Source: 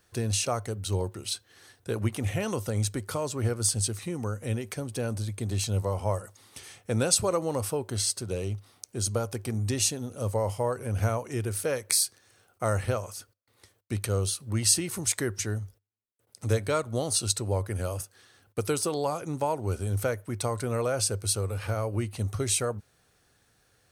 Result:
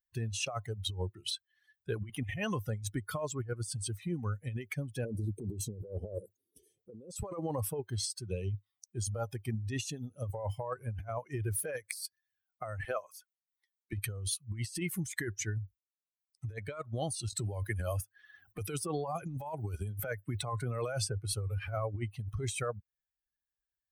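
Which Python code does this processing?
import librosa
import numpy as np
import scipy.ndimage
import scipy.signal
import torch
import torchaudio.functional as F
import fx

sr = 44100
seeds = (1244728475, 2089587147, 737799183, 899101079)

y = fx.curve_eq(x, sr, hz=(100.0, 450.0, 1100.0, 10000.0), db=(0, 13, -20, 1), at=(5.05, 7.12))
y = fx.highpass(y, sr, hz=260.0, slope=12, at=(12.85, 13.93))
y = fx.band_squash(y, sr, depth_pct=70, at=(17.39, 21.33))
y = fx.bin_expand(y, sr, power=2.0)
y = fx.over_compress(y, sr, threshold_db=-40.0, ratio=-1.0)
y = y * 10.0 ** (3.0 / 20.0)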